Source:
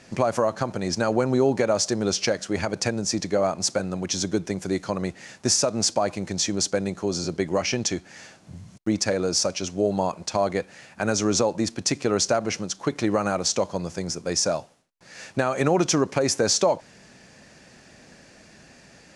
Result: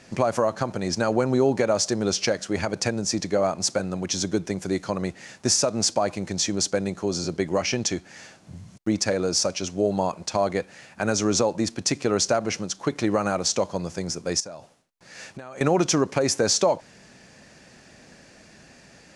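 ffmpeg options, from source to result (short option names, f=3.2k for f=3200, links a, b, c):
-filter_complex "[0:a]asettb=1/sr,asplit=3[a][b][c];[a]atrim=end=14.404[d];[b]atrim=start=14.4:end=15.61,asetpts=PTS-STARTPTS,afade=t=in:d=0.004:c=qsin,afade=t=out:st=1.206:d=0.004:c=qsin,acompressor=threshold=-34dB:ratio=10:attack=3.2:release=140:knee=1:detection=peak[e];[c]atrim=start=15.606[f];[d][e]acrossfade=d=0.004:c1=hsin:c2=qsin[g];[g][f]acrossfade=d=0.004:c1=qsin:c2=hsin"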